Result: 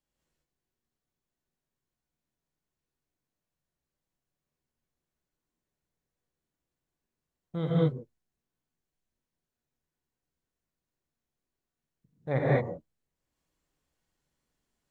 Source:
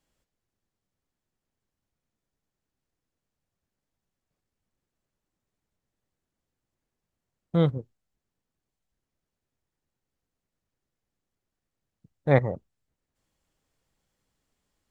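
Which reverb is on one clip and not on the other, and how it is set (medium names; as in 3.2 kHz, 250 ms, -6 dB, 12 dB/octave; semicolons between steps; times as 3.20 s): gated-style reverb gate 240 ms rising, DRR -7 dB; trim -11 dB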